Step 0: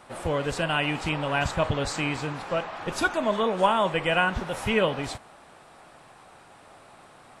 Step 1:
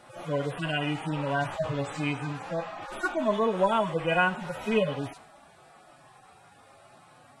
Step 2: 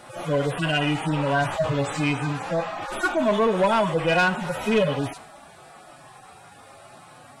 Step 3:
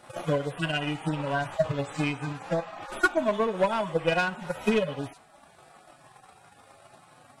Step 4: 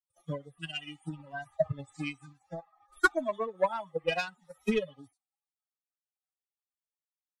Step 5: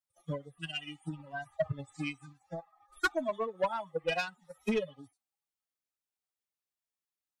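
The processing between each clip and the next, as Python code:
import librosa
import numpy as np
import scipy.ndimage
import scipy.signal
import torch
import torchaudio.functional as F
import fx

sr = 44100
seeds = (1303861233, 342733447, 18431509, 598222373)

y1 = fx.hpss_only(x, sr, part='harmonic')
y2 = fx.high_shelf(y1, sr, hz=6900.0, db=4.0)
y2 = 10.0 ** (-21.5 / 20.0) * np.tanh(y2 / 10.0 ** (-21.5 / 20.0))
y2 = y2 * 10.0 ** (7.5 / 20.0)
y3 = fx.transient(y2, sr, attack_db=12, sustain_db=-4)
y3 = y3 * 10.0 ** (-8.0 / 20.0)
y4 = fx.bin_expand(y3, sr, power=2.0)
y4 = fx.band_widen(y4, sr, depth_pct=70)
y4 = y4 * 10.0 ** (-4.0 / 20.0)
y5 = 10.0 ** (-22.0 / 20.0) * np.tanh(y4 / 10.0 ** (-22.0 / 20.0))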